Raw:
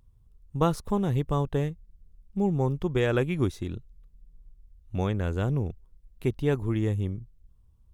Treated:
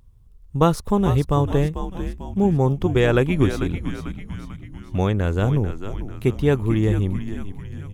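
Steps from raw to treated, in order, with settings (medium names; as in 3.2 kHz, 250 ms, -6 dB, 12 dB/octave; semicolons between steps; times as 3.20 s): frequency-shifting echo 444 ms, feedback 53%, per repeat -99 Hz, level -9 dB; trim +7 dB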